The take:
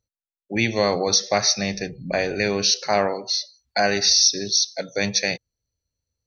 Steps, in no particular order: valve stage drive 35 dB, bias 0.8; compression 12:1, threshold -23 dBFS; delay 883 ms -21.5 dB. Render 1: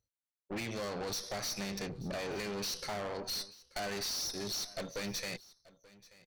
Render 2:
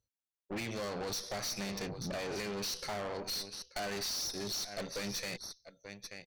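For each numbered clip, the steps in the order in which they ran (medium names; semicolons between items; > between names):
compression > valve stage > delay; delay > compression > valve stage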